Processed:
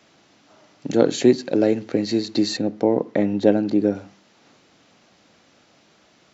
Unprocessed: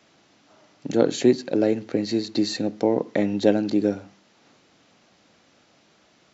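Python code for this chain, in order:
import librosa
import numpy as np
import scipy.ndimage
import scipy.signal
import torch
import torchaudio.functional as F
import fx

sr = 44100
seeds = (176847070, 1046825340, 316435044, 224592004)

y = fx.high_shelf(x, sr, hz=2700.0, db=-10.0, at=(2.57, 3.95))
y = F.gain(torch.from_numpy(y), 2.5).numpy()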